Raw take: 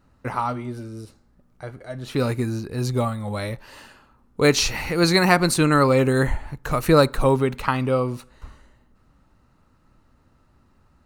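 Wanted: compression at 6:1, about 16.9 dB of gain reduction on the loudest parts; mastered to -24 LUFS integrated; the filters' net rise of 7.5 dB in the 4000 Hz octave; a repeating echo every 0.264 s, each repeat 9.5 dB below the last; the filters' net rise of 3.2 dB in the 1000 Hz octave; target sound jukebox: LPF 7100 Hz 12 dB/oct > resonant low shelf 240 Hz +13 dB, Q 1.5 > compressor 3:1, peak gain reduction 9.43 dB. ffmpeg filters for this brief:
-af "equalizer=f=1k:t=o:g=4.5,equalizer=f=4k:t=o:g=8.5,acompressor=threshold=-28dB:ratio=6,lowpass=7.1k,lowshelf=f=240:t=q:w=1.5:g=13,aecho=1:1:264|528|792|1056:0.335|0.111|0.0365|0.012,acompressor=threshold=-26dB:ratio=3,volume=5.5dB"

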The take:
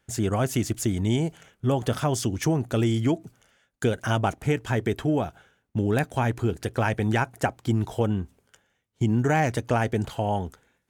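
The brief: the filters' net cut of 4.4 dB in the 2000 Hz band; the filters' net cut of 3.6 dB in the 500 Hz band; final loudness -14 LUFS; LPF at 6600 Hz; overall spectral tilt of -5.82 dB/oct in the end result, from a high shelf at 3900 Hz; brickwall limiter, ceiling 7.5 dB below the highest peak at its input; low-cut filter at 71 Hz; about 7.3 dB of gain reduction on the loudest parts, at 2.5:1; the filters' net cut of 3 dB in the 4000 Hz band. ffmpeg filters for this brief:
-af "highpass=71,lowpass=6.6k,equalizer=f=500:t=o:g=-4.5,equalizer=f=2k:t=o:g=-6,highshelf=f=3.9k:g=5.5,equalizer=f=4k:t=o:g=-4.5,acompressor=threshold=-31dB:ratio=2.5,volume=22dB,alimiter=limit=-2dB:level=0:latency=1"

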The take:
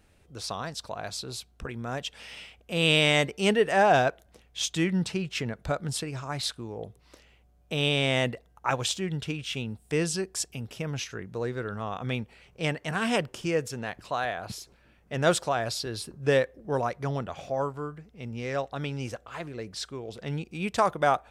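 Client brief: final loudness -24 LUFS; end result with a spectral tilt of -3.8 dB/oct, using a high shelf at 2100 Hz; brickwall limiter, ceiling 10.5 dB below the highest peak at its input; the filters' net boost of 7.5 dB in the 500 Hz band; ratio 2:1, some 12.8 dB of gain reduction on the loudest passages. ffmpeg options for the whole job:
-af "equalizer=f=500:t=o:g=8.5,highshelf=f=2.1k:g=7.5,acompressor=threshold=-35dB:ratio=2,volume=12.5dB,alimiter=limit=-12.5dB:level=0:latency=1"

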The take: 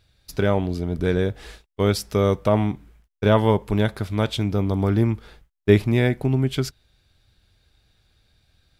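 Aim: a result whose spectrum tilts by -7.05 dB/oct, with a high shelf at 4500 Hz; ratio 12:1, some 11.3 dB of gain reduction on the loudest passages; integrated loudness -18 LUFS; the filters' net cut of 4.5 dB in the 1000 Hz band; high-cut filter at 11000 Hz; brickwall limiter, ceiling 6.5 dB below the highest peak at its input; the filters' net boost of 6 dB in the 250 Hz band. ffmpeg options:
-af "lowpass=11k,equalizer=f=250:t=o:g=8,equalizer=f=1k:t=o:g=-6.5,highshelf=f=4.5k:g=5,acompressor=threshold=-17dB:ratio=12,volume=7.5dB,alimiter=limit=-7dB:level=0:latency=1"

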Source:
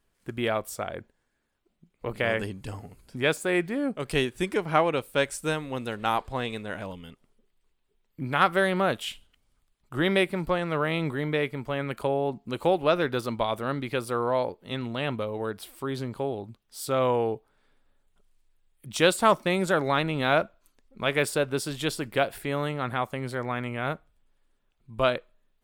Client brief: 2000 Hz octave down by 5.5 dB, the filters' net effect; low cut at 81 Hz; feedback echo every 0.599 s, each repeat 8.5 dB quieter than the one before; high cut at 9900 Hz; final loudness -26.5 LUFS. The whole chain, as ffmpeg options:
-af "highpass=81,lowpass=9.9k,equalizer=f=2k:t=o:g=-7.5,aecho=1:1:599|1198|1797|2396:0.376|0.143|0.0543|0.0206,volume=2dB"

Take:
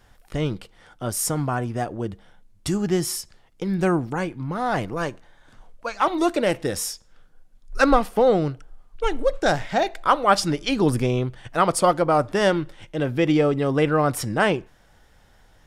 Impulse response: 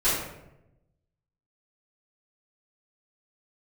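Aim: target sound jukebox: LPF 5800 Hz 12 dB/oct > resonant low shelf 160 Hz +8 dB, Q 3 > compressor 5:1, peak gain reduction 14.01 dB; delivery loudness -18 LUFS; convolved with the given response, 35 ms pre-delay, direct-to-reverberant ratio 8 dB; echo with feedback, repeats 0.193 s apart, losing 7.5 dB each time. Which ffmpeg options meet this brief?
-filter_complex "[0:a]aecho=1:1:193|386|579|772|965:0.422|0.177|0.0744|0.0312|0.0131,asplit=2[a][b];[1:a]atrim=start_sample=2205,adelay=35[c];[b][c]afir=irnorm=-1:irlink=0,volume=-22dB[d];[a][d]amix=inputs=2:normalize=0,lowpass=5.8k,lowshelf=f=160:t=q:w=3:g=8,acompressor=threshold=-21dB:ratio=5,volume=8dB"

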